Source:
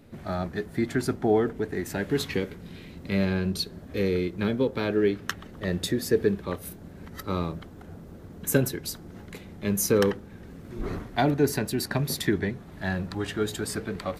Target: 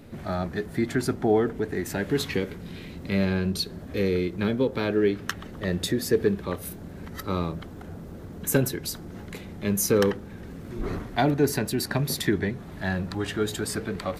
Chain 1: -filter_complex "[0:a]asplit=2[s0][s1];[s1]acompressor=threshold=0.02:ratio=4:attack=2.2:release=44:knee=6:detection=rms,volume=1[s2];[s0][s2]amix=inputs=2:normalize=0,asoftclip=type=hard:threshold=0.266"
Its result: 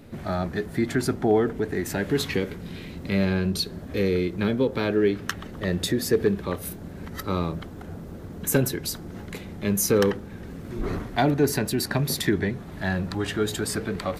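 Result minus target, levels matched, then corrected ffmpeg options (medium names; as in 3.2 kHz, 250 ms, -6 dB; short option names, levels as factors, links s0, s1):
compression: peak gain reduction -8 dB
-filter_complex "[0:a]asplit=2[s0][s1];[s1]acompressor=threshold=0.00596:ratio=4:attack=2.2:release=44:knee=6:detection=rms,volume=1[s2];[s0][s2]amix=inputs=2:normalize=0,asoftclip=type=hard:threshold=0.266"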